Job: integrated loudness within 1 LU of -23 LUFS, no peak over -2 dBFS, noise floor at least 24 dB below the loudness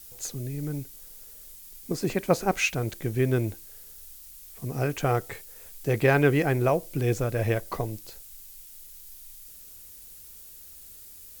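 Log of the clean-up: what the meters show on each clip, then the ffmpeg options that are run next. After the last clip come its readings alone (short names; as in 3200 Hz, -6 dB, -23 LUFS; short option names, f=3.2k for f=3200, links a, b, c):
noise floor -47 dBFS; noise floor target -51 dBFS; loudness -27.0 LUFS; peak -9.0 dBFS; loudness target -23.0 LUFS
-> -af "afftdn=nr=6:nf=-47"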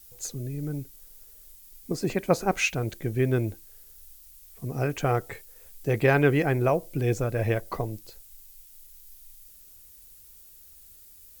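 noise floor -51 dBFS; loudness -27.0 LUFS; peak -8.5 dBFS; loudness target -23.0 LUFS
-> -af "volume=4dB"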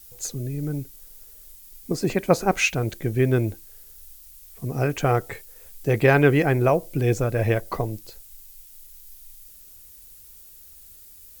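loudness -23.0 LUFS; peak -4.5 dBFS; noise floor -47 dBFS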